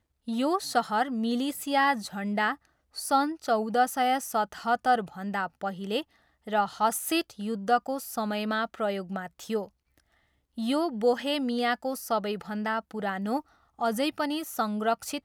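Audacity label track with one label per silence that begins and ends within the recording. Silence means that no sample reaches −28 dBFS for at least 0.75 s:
9.610000	10.580000	silence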